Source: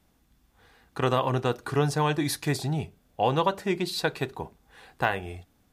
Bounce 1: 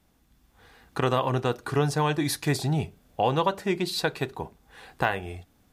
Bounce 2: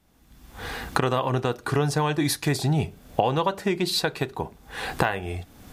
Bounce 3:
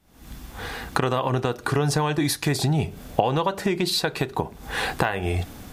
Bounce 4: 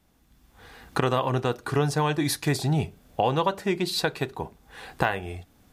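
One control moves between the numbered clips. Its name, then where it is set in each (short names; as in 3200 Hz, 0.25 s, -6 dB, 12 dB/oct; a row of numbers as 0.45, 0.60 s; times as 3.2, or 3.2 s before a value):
recorder AGC, rising by: 5.2, 36, 89, 14 dB/s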